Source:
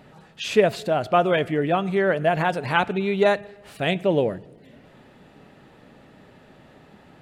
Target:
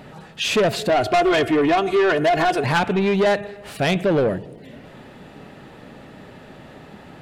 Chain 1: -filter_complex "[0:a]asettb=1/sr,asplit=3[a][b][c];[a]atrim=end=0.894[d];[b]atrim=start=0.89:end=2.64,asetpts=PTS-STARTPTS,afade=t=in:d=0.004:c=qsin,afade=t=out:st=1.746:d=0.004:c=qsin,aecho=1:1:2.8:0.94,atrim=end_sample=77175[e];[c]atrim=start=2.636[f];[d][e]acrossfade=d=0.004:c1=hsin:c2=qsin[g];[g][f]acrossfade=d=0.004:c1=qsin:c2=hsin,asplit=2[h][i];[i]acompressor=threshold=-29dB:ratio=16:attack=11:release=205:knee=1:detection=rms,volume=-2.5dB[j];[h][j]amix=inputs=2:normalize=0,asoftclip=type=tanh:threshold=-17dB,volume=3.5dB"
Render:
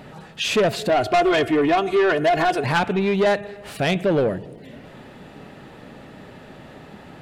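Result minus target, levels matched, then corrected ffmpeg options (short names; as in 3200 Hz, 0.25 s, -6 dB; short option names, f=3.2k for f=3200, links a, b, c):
compressor: peak gain reduction +8.5 dB
-filter_complex "[0:a]asettb=1/sr,asplit=3[a][b][c];[a]atrim=end=0.894[d];[b]atrim=start=0.89:end=2.64,asetpts=PTS-STARTPTS,afade=t=in:d=0.004:c=qsin,afade=t=out:st=1.746:d=0.004:c=qsin,aecho=1:1:2.8:0.94,atrim=end_sample=77175[e];[c]atrim=start=2.636[f];[d][e]acrossfade=d=0.004:c1=hsin:c2=qsin[g];[g][f]acrossfade=d=0.004:c1=qsin:c2=hsin,asplit=2[h][i];[i]acompressor=threshold=-20dB:ratio=16:attack=11:release=205:knee=1:detection=rms,volume=-2.5dB[j];[h][j]amix=inputs=2:normalize=0,asoftclip=type=tanh:threshold=-17dB,volume=3.5dB"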